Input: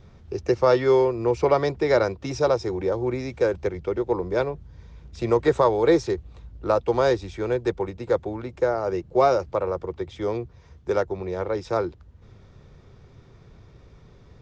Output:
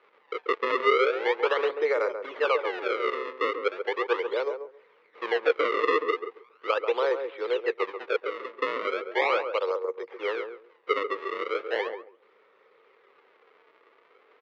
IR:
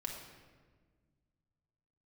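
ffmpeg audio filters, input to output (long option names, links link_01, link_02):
-filter_complex "[0:a]acrusher=samples=32:mix=1:aa=0.000001:lfo=1:lforange=51.2:lforate=0.38,alimiter=limit=-13.5dB:level=0:latency=1:release=79,highpass=frequency=450:width=0.5412,highpass=frequency=450:width=1.3066,equalizer=frequency=460:width_type=q:width=4:gain=7,equalizer=frequency=690:width_type=q:width=4:gain=-7,equalizer=frequency=1200:width_type=q:width=4:gain=7,equalizer=frequency=2100:width_type=q:width=4:gain=7,lowpass=frequency=3500:width=0.5412,lowpass=frequency=3500:width=1.3066,asplit=2[link_01][link_02];[link_02]adelay=137,lowpass=frequency=840:poles=1,volume=-5.5dB,asplit=2[link_03][link_04];[link_04]adelay=137,lowpass=frequency=840:poles=1,volume=0.2,asplit=2[link_05][link_06];[link_06]adelay=137,lowpass=frequency=840:poles=1,volume=0.2[link_07];[link_03][link_05][link_07]amix=inputs=3:normalize=0[link_08];[link_01][link_08]amix=inputs=2:normalize=0,volume=-3.5dB"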